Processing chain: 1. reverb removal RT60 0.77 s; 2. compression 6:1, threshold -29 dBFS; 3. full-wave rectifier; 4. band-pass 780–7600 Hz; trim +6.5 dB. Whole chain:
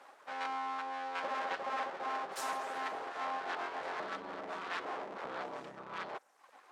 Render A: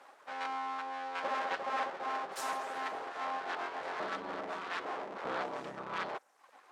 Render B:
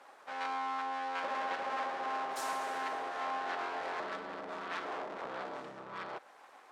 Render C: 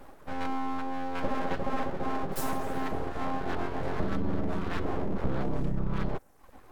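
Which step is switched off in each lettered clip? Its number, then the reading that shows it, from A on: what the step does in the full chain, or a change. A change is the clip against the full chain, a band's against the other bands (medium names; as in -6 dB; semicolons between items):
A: 2, momentary loudness spread change -1 LU; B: 1, momentary loudness spread change +2 LU; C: 4, 250 Hz band +17.0 dB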